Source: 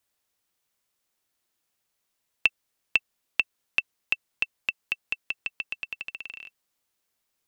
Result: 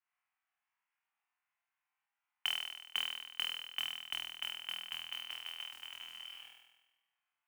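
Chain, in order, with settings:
single-sideband voice off tune +390 Hz 350–2,300 Hz
noise that follows the level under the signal 14 dB
flutter between parallel walls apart 4.2 metres, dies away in 1.1 s
level −7.5 dB

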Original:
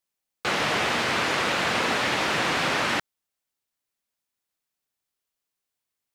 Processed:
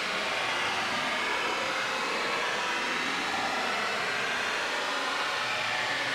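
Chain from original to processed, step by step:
mid-hump overdrive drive 10 dB, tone 6,600 Hz, clips at −11 dBFS
extreme stretch with random phases 19×, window 0.05 s, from 0:01.73
level −8.5 dB

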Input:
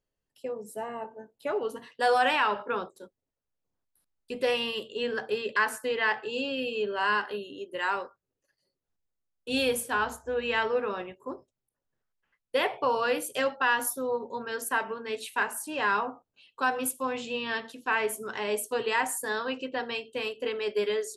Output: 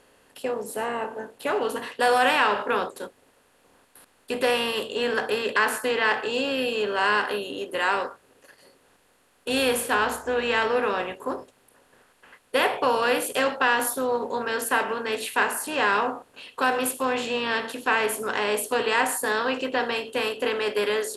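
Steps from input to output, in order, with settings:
compressor on every frequency bin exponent 0.6
level +1 dB

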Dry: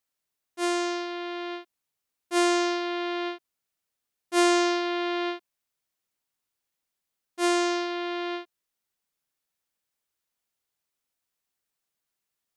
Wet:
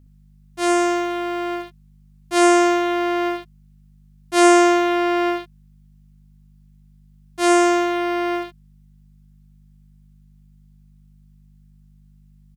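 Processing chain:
in parallel at −9.5 dB: bit reduction 7 bits
on the sum: mains hum 50 Hz, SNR 25 dB
ambience of single reflections 13 ms −14.5 dB, 66 ms −4 dB
level +3.5 dB

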